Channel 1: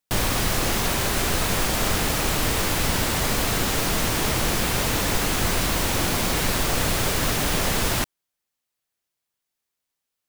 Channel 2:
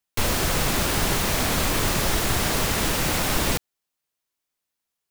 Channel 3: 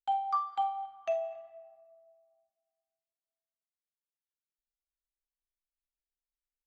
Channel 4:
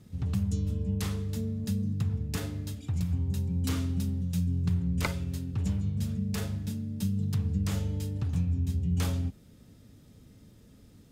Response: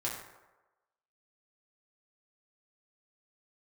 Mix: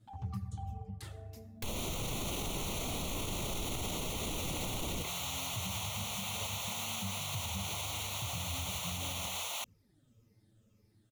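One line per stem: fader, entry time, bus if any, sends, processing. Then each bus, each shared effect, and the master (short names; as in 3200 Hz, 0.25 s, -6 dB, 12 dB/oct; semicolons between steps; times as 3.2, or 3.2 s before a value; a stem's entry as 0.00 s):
-8.0 dB, 1.60 s, no send, HPF 730 Hz 24 dB/oct; bell 11000 Hz -2 dB
-5.5 dB, 1.45 s, no send, dry
-13.5 dB, 0.00 s, send -12 dB, compressor 2.5:1, threshold -42 dBFS, peak gain reduction 11 dB
-12.5 dB, 0.00 s, send -5.5 dB, moving spectral ripple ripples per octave 0.81, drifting -1.9 Hz, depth 7 dB; reverb removal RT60 0.74 s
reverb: on, RT60 1.1 s, pre-delay 4 ms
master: envelope flanger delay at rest 10.3 ms, full sweep at -31 dBFS; limiter -28 dBFS, peak gain reduction 11.5 dB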